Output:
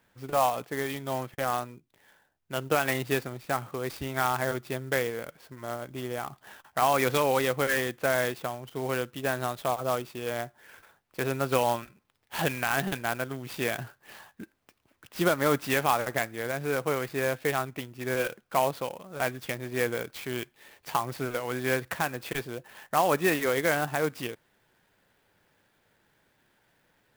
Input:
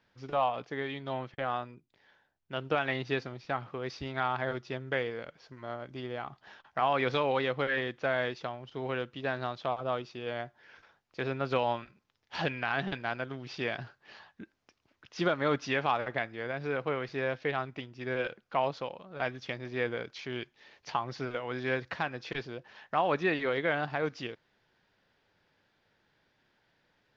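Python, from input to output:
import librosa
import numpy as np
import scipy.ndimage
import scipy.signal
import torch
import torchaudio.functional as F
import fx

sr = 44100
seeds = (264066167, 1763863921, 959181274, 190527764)

y = fx.clock_jitter(x, sr, seeds[0], jitter_ms=0.036)
y = y * librosa.db_to_amplitude(4.0)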